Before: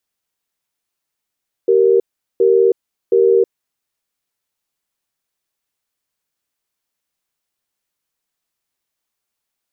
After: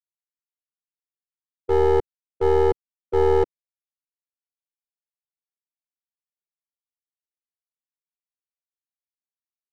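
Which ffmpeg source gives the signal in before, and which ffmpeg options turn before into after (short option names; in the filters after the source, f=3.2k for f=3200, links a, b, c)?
-f lavfi -i "aevalsrc='0.266*(sin(2*PI*387*t)+sin(2*PI*466*t))*clip(min(mod(t,0.72),0.32-mod(t,0.72))/0.005,0,1)':d=1.78:s=44100"
-filter_complex "[0:a]agate=range=-33dB:threshold=-8dB:ratio=3:detection=peak,acrossover=split=350[a][b];[b]adynamicsmooth=sensitivity=5.5:basefreq=530[c];[a][c]amix=inputs=2:normalize=0,aeval=exprs='clip(val(0),-1,0.0708)':c=same"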